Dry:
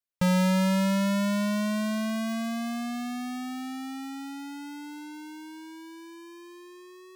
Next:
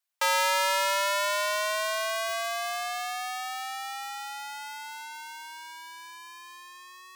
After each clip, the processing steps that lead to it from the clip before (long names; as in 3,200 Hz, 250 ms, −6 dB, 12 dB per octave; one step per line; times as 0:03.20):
Butterworth high-pass 650 Hz 36 dB per octave
level +7.5 dB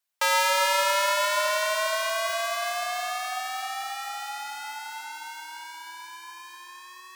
dense smooth reverb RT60 4.3 s, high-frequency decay 0.55×, DRR 8 dB
level +2 dB